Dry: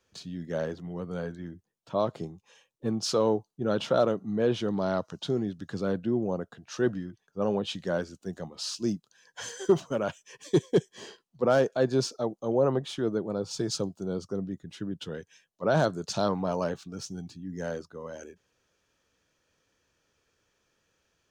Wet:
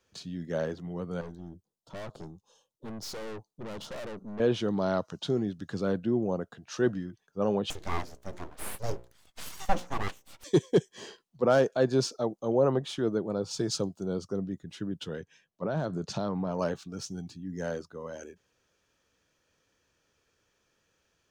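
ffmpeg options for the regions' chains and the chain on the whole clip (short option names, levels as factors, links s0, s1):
-filter_complex "[0:a]asettb=1/sr,asplit=3[s0][s1][s2];[s0]atrim=end=1.214[s3];[s1]atrim=start=1.21:end=4.4,asetpts=PTS-STARTPTS,afade=t=in:d=0.004:c=qsin,afade=t=out:st=3.186:d=0.004:c=qsin,asuperstop=centerf=2100:order=4:qfactor=1,aeval=exprs='(tanh(79.4*val(0)+0.55)-tanh(0.55))/79.4':c=same[s4];[s2]atrim=start=4.396[s5];[s3][s4]acrossfade=d=0.004:c1=hsin:c2=qsin[s6];[s6][s5]acrossfade=d=0.004:c1=qsin:c2=hsin,asettb=1/sr,asplit=3[s7][s8][s9];[s7]atrim=end=7.704[s10];[s8]atrim=start=7.7:end=10.44,asetpts=PTS-STARTPTS,afade=t=in:d=0.004:c=qsin,afade=t=out:st=2.736:d=0.004:c=qsin,bandreject=f=60:t=h:w=6,bandreject=f=120:t=h:w=6,bandreject=f=180:t=h:w=6,bandreject=f=240:t=h:w=6,bandreject=f=300:t=h:w=6,bandreject=f=360:t=h:w=6,bandreject=f=420:t=h:w=6,bandreject=f=480:t=h:w=6,aeval=exprs='abs(val(0))':c=same[s11];[s9]atrim=start=10.436[s12];[s10][s11]acrossfade=d=0.004:c1=hsin:c2=qsin[s13];[s13][s12]acrossfade=d=0.004:c1=qsin:c2=hsin,asettb=1/sr,asplit=3[s14][s15][s16];[s14]atrim=end=15.204[s17];[s15]atrim=start=15.2:end=16.59,asetpts=PTS-STARTPTS,afade=t=in:d=0.004:c=qsin,afade=t=out:st=1.386:d=0.004:c=qsin,lowpass=f=3300:p=1,equalizer=f=150:t=o:w=2.2:g=5.5,acompressor=threshold=0.0447:ratio=6:attack=3.2:release=140:knee=1:detection=peak[s18];[s16]atrim=start=16.586[s19];[s17][s18]acrossfade=d=0.004:c1=hsin:c2=qsin[s20];[s20][s19]acrossfade=d=0.004:c1=qsin:c2=hsin"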